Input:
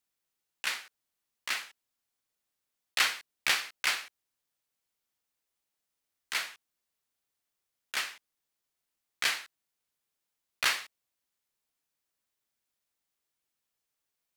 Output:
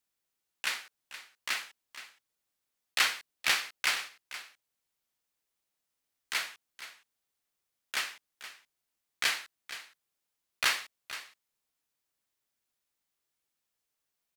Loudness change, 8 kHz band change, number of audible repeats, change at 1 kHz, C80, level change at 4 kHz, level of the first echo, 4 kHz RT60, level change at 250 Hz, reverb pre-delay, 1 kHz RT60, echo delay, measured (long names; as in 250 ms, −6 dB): −1.0 dB, 0.0 dB, 1, 0.0 dB, no reverb audible, 0.0 dB, −13.5 dB, no reverb audible, 0.0 dB, no reverb audible, no reverb audible, 471 ms